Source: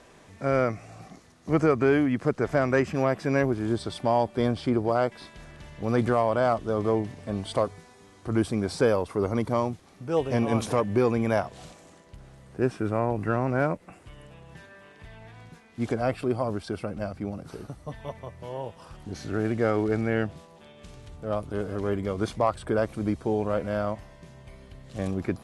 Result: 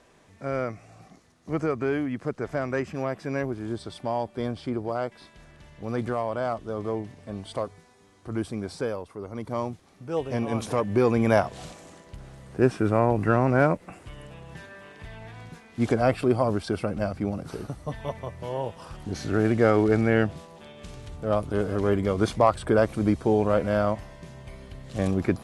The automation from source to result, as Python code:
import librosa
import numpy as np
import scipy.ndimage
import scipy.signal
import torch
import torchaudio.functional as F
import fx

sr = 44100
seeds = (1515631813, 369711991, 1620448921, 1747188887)

y = fx.gain(x, sr, db=fx.line((8.64, -5.0), (9.25, -11.5), (9.61, -3.0), (10.56, -3.0), (11.34, 4.5)))